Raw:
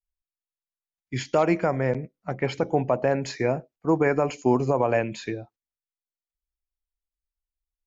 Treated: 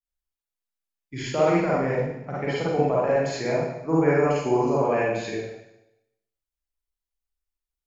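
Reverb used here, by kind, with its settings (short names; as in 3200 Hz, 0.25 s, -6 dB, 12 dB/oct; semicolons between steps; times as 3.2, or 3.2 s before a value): Schroeder reverb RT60 0.86 s, DRR -7.5 dB; gain -7 dB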